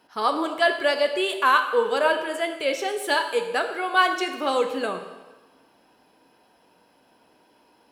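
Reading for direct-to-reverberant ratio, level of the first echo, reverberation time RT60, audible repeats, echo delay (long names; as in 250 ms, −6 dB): 5.5 dB, no echo audible, 1.2 s, no echo audible, no echo audible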